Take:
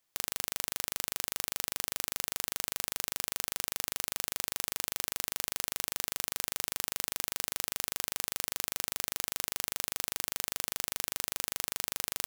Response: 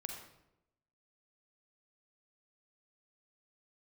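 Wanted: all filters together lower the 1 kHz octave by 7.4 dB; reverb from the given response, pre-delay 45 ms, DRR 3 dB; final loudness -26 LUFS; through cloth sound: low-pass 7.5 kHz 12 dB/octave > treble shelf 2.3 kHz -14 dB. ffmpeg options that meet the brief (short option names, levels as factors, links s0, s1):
-filter_complex "[0:a]equalizer=f=1000:t=o:g=-6.5,asplit=2[s0][s1];[1:a]atrim=start_sample=2205,adelay=45[s2];[s1][s2]afir=irnorm=-1:irlink=0,volume=0.841[s3];[s0][s3]amix=inputs=2:normalize=0,lowpass=7500,highshelf=f=2300:g=-14,volume=10.6"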